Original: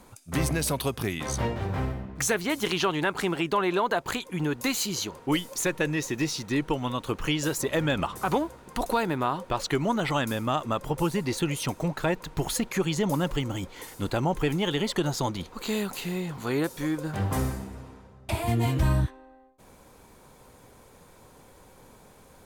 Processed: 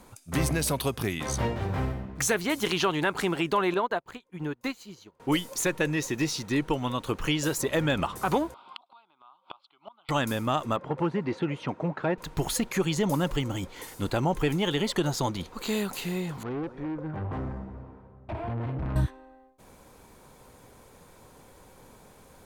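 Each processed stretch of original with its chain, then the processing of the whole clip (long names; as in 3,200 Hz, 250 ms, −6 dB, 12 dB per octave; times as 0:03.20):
0:03.74–0:05.20: parametric band 11,000 Hz −8.5 dB 2.2 octaves + expander for the loud parts 2.5 to 1, over −40 dBFS
0:08.54–0:10.09: loudspeaker in its box 490–5,800 Hz, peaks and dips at 500 Hz +10 dB, 820 Hz +4 dB, 1,200 Hz +7 dB, 3,400 Hz +7 dB + phaser with its sweep stopped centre 1,800 Hz, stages 6 + gate with flip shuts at −23 dBFS, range −31 dB
0:10.76–0:12.18: hard clipping −20 dBFS + band-pass filter 140–2,000 Hz
0:16.43–0:18.96: low-pass filter 1,300 Hz + single-tap delay 228 ms −19 dB + tube saturation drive 29 dB, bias 0.25
whole clip: no processing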